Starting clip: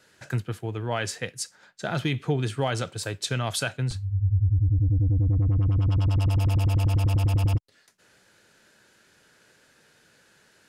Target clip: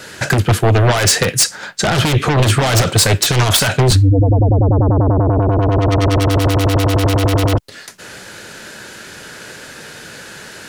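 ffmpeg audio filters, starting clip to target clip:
-filter_complex "[0:a]asplit=2[a][b];[b]aeval=exprs='0.2*sin(PI/2*6.31*val(0)/0.2)':c=same,volume=-9dB[c];[a][c]amix=inputs=2:normalize=0,alimiter=level_in=17.5dB:limit=-1dB:release=50:level=0:latency=1,volume=-5dB"

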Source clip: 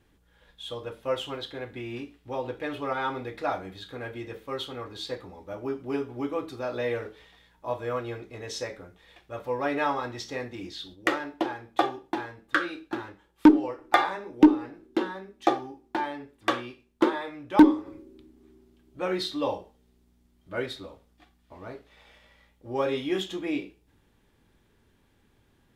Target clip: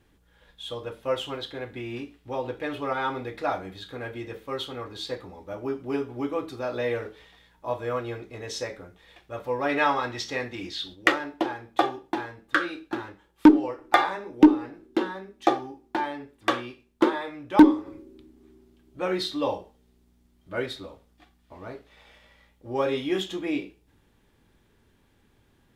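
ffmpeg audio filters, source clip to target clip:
-filter_complex "[0:a]asettb=1/sr,asplit=3[a][b][c];[a]atrim=end=9.694[d];[b]atrim=start=9.69:end=11.12,asetpts=PTS-STARTPTS,afade=t=in:d=0.004:c=qsin,afade=t=out:st=1.426:d=0.004:c=qsin,equalizer=f=2.6k:t=o:w=2.6:g=5.5[e];[c]atrim=start=11.116[f];[d][e]acrossfade=d=0.004:c1=hsin:c2=qsin[g];[g][f]acrossfade=d=0.004:c1=qsin:c2=hsin,volume=1.5dB"

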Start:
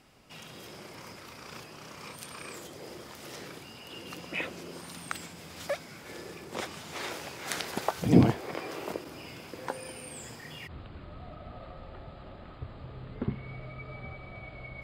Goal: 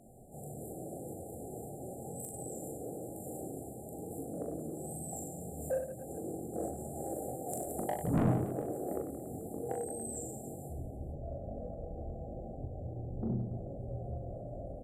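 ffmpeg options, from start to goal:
-filter_complex "[0:a]flanger=delay=20:depth=4.7:speed=0.95,afftfilt=real='re*(1-between(b*sr/4096,900,7800))':imag='im*(1-between(b*sr/4096,900,7800))':win_size=4096:overlap=0.75,asplit=2[a][b];[b]acompressor=threshold=-49dB:ratio=8,volume=2dB[c];[a][c]amix=inputs=2:normalize=0,asetrate=40440,aresample=44100,atempo=1.09051,asoftclip=type=tanh:threshold=-26.5dB,bandreject=f=50:t=h:w=6,bandreject=f=100:t=h:w=6,bandreject=f=150:t=h:w=6,bandreject=f=200:t=h:w=6,bandreject=f=250:t=h:w=6,bandreject=f=300:t=h:w=6,bandreject=f=350:t=h:w=6,bandreject=f=400:t=h:w=6,aecho=1:1:40|96|174.4|284.2|437.8:0.631|0.398|0.251|0.158|0.1,volume=1dB"

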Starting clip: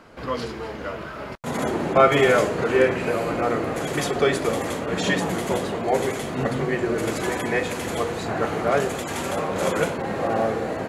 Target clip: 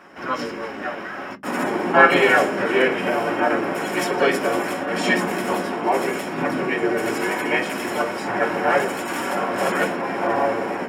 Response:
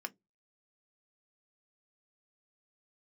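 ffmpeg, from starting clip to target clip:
-filter_complex "[0:a]bandreject=f=50:t=h:w=6,bandreject=f=100:t=h:w=6,bandreject=f=150:t=h:w=6,bandreject=f=200:t=h:w=6,bandreject=f=250:t=h:w=6,asplit=2[a][b];[b]asetrate=55563,aresample=44100,atempo=0.793701,volume=-2dB[c];[a][c]amix=inputs=2:normalize=0[d];[1:a]atrim=start_sample=2205[e];[d][e]afir=irnorm=-1:irlink=0,volume=2dB"

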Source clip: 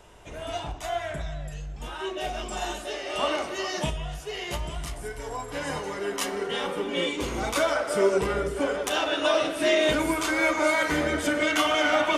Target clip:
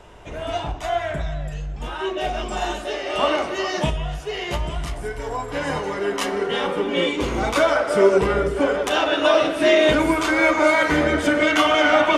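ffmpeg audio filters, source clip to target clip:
-af "lowpass=f=3.3k:p=1,volume=7dB"

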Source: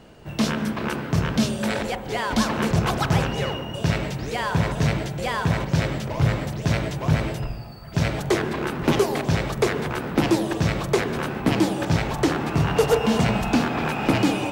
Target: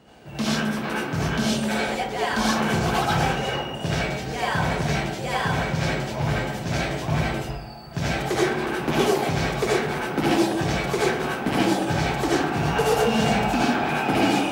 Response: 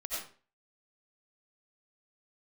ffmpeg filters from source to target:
-filter_complex "[0:a]highpass=84[a];[1:a]atrim=start_sample=2205,asetrate=52920,aresample=44100[b];[a][b]afir=irnorm=-1:irlink=0,volume=1dB"

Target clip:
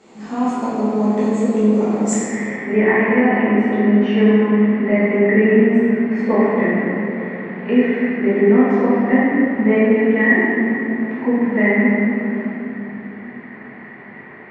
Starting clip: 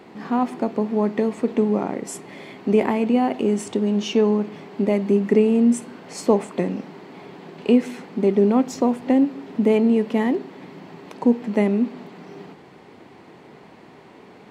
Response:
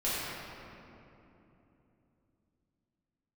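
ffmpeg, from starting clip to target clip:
-filter_complex "[0:a]asetnsamples=n=441:p=0,asendcmd='2.13 lowpass f 1900',lowpass=f=7.2k:t=q:w=10[a];[1:a]atrim=start_sample=2205[b];[a][b]afir=irnorm=-1:irlink=0,volume=-6.5dB"

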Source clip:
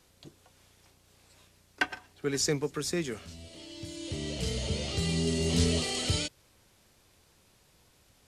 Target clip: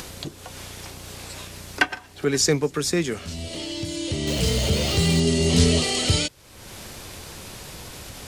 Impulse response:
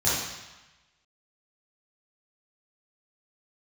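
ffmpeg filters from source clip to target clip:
-filter_complex "[0:a]asettb=1/sr,asplit=3[a][b][c];[a]atrim=end=4.274[d];[b]atrim=start=4.27:end=5.2,asetpts=PTS-STARTPTS,afade=t=in:d=0.004:c=qsin,afade=t=out:st=0.926:d=0.004:c=qsin,aeval=exprs='val(0)+0.5*0.0158*sgn(val(0))':c=same[e];[c]atrim=start=5.196[f];[d][e]acrossfade=d=0.004:c1=hsin:c2=qsin[g];[g][f]acrossfade=d=0.004:c1=qsin:c2=hsin,acompressor=mode=upward:threshold=-32dB:ratio=2.5,volume=8.5dB"

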